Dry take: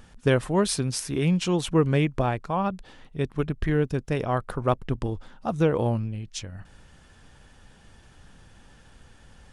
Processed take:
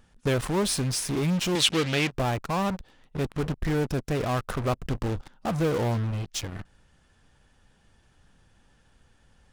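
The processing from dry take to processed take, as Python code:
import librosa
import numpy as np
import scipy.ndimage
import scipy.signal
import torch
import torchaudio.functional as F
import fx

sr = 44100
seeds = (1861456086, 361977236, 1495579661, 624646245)

p1 = fx.fuzz(x, sr, gain_db=40.0, gate_db=-39.0)
p2 = x + F.gain(torch.from_numpy(p1), -6.0).numpy()
p3 = fx.weighting(p2, sr, curve='D', at=(1.55, 2.12))
y = F.gain(torch.from_numpy(p3), -9.0).numpy()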